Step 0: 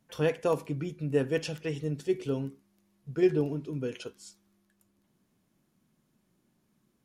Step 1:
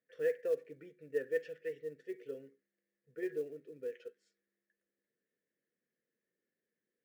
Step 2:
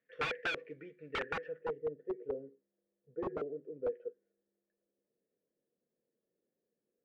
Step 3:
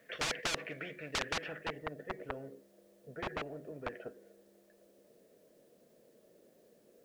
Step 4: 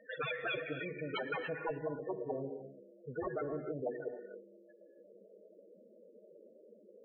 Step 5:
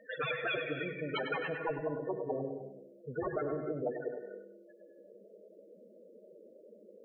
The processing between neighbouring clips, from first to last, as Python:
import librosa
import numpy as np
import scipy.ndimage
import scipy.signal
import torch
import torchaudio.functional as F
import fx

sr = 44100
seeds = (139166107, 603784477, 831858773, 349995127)

y1 = fx.double_bandpass(x, sr, hz=930.0, octaves=1.9)
y1 = fx.quant_float(y1, sr, bits=4)
y1 = y1 * 10.0 ** (-3.0 / 20.0)
y2 = (np.mod(10.0 ** (33.0 / 20.0) * y1 + 1.0, 2.0) - 1.0) / 10.0 ** (33.0 / 20.0)
y2 = fx.filter_sweep_lowpass(y2, sr, from_hz=2500.0, to_hz=680.0, start_s=1.17, end_s=1.81, q=1.4)
y2 = y2 * 10.0 ** (3.0 / 20.0)
y3 = fx.peak_eq(y2, sr, hz=630.0, db=9.5, octaves=0.35)
y3 = fx.spectral_comp(y3, sr, ratio=4.0)
y3 = y3 * 10.0 ** (5.5 / 20.0)
y4 = fx.spec_topn(y3, sr, count=8)
y4 = fx.rev_gated(y4, sr, seeds[0], gate_ms=320, shape='rising', drr_db=8.5)
y4 = y4 * 10.0 ** (7.0 / 20.0)
y5 = fx.echo_feedback(y4, sr, ms=99, feedback_pct=27, wet_db=-9.0)
y5 = y5 * 10.0 ** (2.5 / 20.0)